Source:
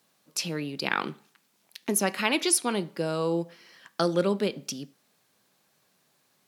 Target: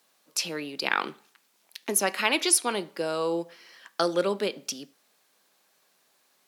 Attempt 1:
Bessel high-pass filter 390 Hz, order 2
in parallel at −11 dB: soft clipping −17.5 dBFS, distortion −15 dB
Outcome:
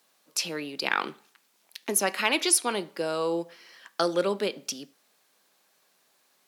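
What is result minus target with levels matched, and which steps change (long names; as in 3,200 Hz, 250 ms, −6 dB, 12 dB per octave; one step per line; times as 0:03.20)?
soft clipping: distortion +16 dB
change: soft clipping −6.5 dBFS, distortion −31 dB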